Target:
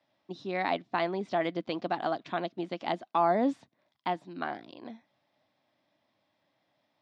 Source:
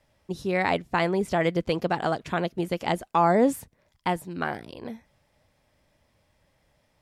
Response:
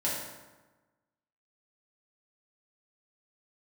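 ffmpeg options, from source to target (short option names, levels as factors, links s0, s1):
-af "highpass=f=140:w=0.5412,highpass=f=140:w=1.3066,equalizer=f=160:t=q:w=4:g=-6,equalizer=f=300:t=q:w=4:g=6,equalizer=f=460:t=q:w=4:g=-6,equalizer=f=700:t=q:w=4:g=6,equalizer=f=1100:t=q:w=4:g=3,equalizer=f=3700:t=q:w=4:g=6,lowpass=f=5300:w=0.5412,lowpass=f=5300:w=1.3066,volume=0.422"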